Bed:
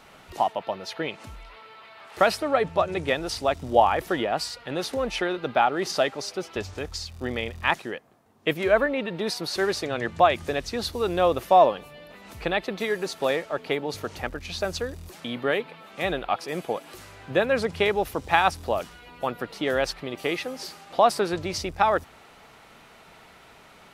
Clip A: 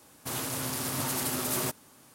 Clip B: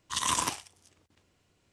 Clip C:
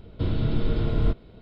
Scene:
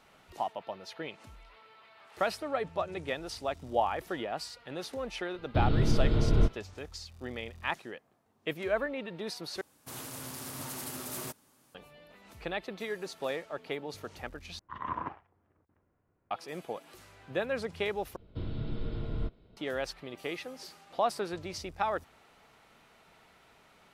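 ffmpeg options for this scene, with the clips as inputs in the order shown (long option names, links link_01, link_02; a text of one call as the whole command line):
ffmpeg -i bed.wav -i cue0.wav -i cue1.wav -i cue2.wav -filter_complex "[3:a]asplit=2[link_01][link_02];[0:a]volume=-10dB[link_03];[link_01]agate=range=-33dB:threshold=-37dB:ratio=3:release=100:detection=peak[link_04];[2:a]lowpass=frequency=1600:width=0.5412,lowpass=frequency=1600:width=1.3066[link_05];[link_03]asplit=4[link_06][link_07][link_08][link_09];[link_06]atrim=end=9.614[link_10];[1:a]atrim=end=2.14,asetpts=PTS-STARTPTS,volume=-9dB[link_11];[link_07]atrim=start=11.746:end=14.594[link_12];[link_05]atrim=end=1.72,asetpts=PTS-STARTPTS,volume=-4dB[link_13];[link_08]atrim=start=16.306:end=18.164[link_14];[link_02]atrim=end=1.41,asetpts=PTS-STARTPTS,volume=-11.5dB[link_15];[link_09]atrim=start=19.566[link_16];[link_04]atrim=end=1.41,asetpts=PTS-STARTPTS,volume=-1.5dB,afade=type=in:duration=0.004:curve=hsin,afade=type=out:start_time=1.406:duration=0.004:curve=hsin,adelay=5350[link_17];[link_10][link_11]acrossfade=duration=0.004:curve1=hsin:curve2=hsin[link_18];[link_18][link_12]acrossfade=duration=0.004:curve1=hsin:curve2=hsin[link_19];[link_19][link_13]acrossfade=duration=0.004:curve1=hsin:curve2=hsin[link_20];[link_20][link_14]acrossfade=duration=0.004:curve1=hsin:curve2=hsin[link_21];[link_21][link_15]acrossfade=duration=0.004:curve1=hsin:curve2=hsin[link_22];[link_22][link_16]acrossfade=duration=0.004:curve1=hsin:curve2=hsin[link_23];[link_23][link_17]amix=inputs=2:normalize=0" out.wav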